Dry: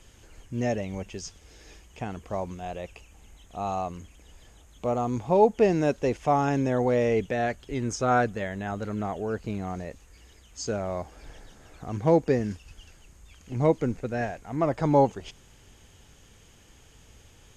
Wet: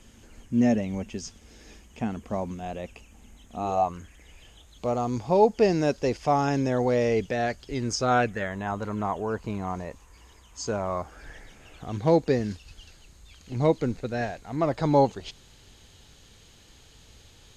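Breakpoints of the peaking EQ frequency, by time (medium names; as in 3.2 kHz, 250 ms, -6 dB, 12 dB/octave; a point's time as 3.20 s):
peaking EQ +12 dB 0.42 oct
3.58 s 230 Hz
3.95 s 1.4 kHz
4.87 s 4.8 kHz
8.03 s 4.8 kHz
8.55 s 1 kHz
10.83 s 1 kHz
12.04 s 4.1 kHz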